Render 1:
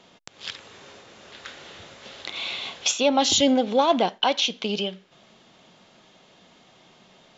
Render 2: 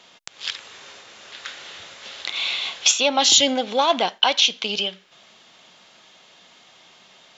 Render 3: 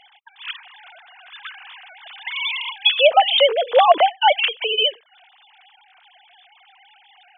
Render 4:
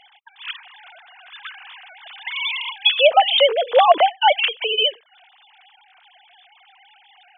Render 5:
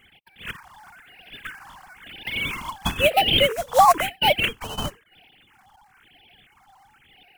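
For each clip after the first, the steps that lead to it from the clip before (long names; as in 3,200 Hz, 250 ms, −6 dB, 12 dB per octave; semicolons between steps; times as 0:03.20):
tilt shelving filter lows −7 dB, about 670 Hz
three sine waves on the formant tracks; level +3.5 dB
no processing that can be heard
in parallel at −7 dB: sample-rate reduction 3,300 Hz, jitter 20%; on the sum: all-pass phaser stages 4, 1 Hz, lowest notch 410–1,200 Hz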